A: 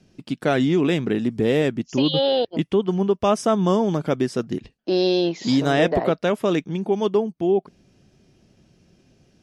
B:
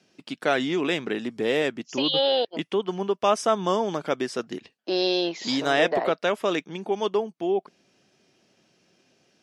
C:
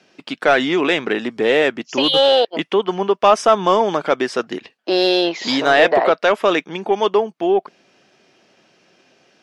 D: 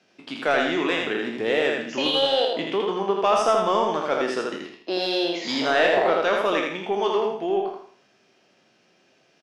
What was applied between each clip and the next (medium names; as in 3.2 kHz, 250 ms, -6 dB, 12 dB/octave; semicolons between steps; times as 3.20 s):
frequency weighting A
overdrive pedal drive 11 dB, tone 2.2 kHz, clips at -7 dBFS; trim +7 dB
spectral sustain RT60 0.42 s; on a send: feedback delay 81 ms, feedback 32%, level -3.5 dB; on the sum: trim -9 dB